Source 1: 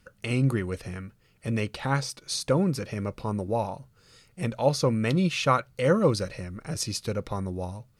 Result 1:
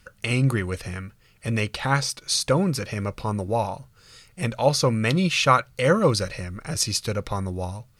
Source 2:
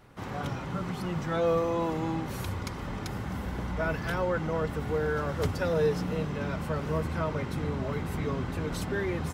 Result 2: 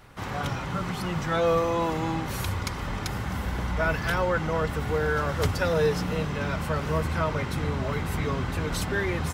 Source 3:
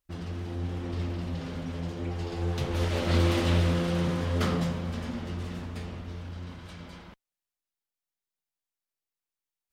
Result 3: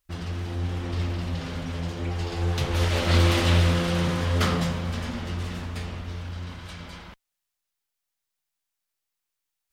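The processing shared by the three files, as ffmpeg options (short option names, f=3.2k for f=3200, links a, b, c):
-af "equalizer=f=280:w=0.43:g=-6.5,volume=7.5dB"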